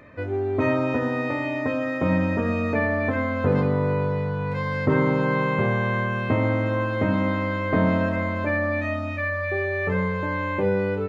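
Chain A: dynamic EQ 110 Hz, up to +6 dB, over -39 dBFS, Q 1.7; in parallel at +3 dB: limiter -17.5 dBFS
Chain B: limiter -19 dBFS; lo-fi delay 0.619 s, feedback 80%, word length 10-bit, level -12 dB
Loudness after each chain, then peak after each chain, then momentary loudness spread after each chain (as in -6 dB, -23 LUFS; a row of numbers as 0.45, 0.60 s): -17.0, -27.0 LUFS; -4.0, -15.5 dBFS; 3, 1 LU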